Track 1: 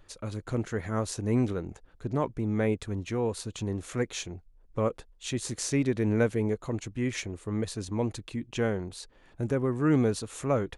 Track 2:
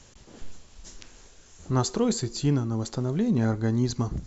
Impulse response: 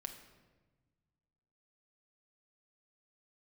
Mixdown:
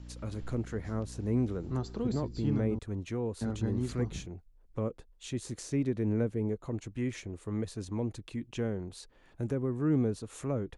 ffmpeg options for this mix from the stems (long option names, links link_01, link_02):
-filter_complex "[0:a]adynamicequalizer=threshold=0.00501:dfrequency=1500:dqfactor=0.7:tfrequency=1500:tqfactor=0.7:attack=5:release=100:ratio=0.375:range=2.5:mode=cutabove:tftype=highshelf,volume=-3dB[link_01];[1:a]equalizer=frequency=6700:width_type=o:width=0.42:gain=-13,aeval=exprs='val(0)+0.0158*(sin(2*PI*60*n/s)+sin(2*PI*2*60*n/s)/2+sin(2*PI*3*60*n/s)/3+sin(2*PI*4*60*n/s)/4+sin(2*PI*5*60*n/s)/5)':channel_layout=same,volume=-8.5dB,asplit=3[link_02][link_03][link_04];[link_02]atrim=end=2.79,asetpts=PTS-STARTPTS,afade=type=out:start_time=2.786:duration=0.004:curve=hsin[link_05];[link_03]atrim=start=2.79:end=3.41,asetpts=PTS-STARTPTS,volume=0[link_06];[link_04]atrim=start=3.41,asetpts=PTS-STARTPTS,afade=type=in:duration=0.004:curve=hsin[link_07];[link_05][link_06][link_07]concat=n=3:v=0:a=1[link_08];[link_01][link_08]amix=inputs=2:normalize=0,acrossover=split=450[link_09][link_10];[link_10]acompressor=threshold=-45dB:ratio=2.5[link_11];[link_09][link_11]amix=inputs=2:normalize=0"